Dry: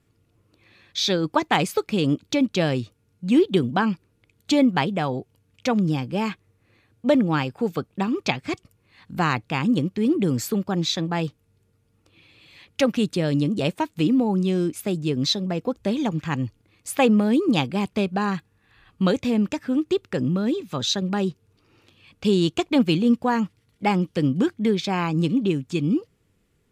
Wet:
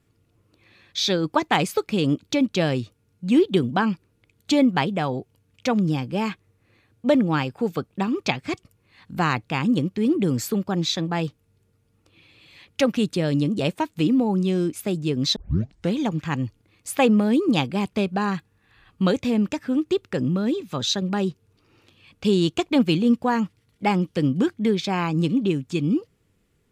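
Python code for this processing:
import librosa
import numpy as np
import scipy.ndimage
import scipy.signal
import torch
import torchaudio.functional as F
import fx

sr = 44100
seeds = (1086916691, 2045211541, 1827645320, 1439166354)

y = fx.edit(x, sr, fx.tape_start(start_s=15.36, length_s=0.59), tone=tone)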